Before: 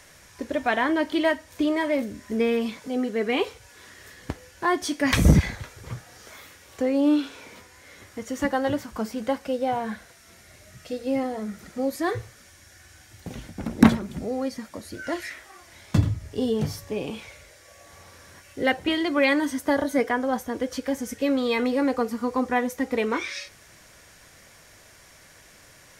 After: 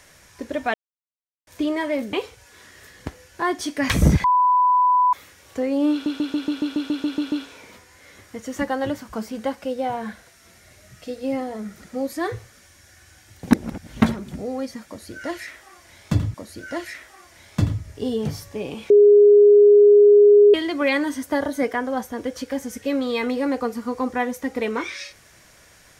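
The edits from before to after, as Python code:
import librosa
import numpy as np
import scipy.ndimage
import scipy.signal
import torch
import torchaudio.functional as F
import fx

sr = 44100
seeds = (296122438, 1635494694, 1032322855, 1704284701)

y = fx.edit(x, sr, fx.silence(start_s=0.74, length_s=0.73),
    fx.cut(start_s=2.13, length_s=1.23),
    fx.bleep(start_s=5.47, length_s=0.89, hz=996.0, db=-13.5),
    fx.stutter(start_s=7.15, slice_s=0.14, count=11),
    fx.reverse_span(start_s=13.34, length_s=0.51),
    fx.repeat(start_s=14.7, length_s=1.47, count=2),
    fx.bleep(start_s=17.26, length_s=1.64, hz=412.0, db=-8.0), tone=tone)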